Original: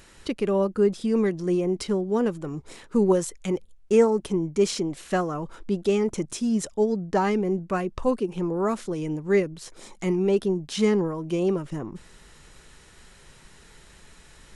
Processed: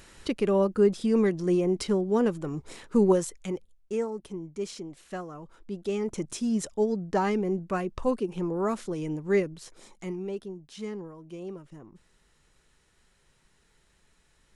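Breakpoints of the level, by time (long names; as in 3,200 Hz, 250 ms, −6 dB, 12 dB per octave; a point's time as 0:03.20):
0:03.05 −0.5 dB
0:04.02 −12 dB
0:05.56 −12 dB
0:06.28 −3 dB
0:09.47 −3 dB
0:10.53 −15 dB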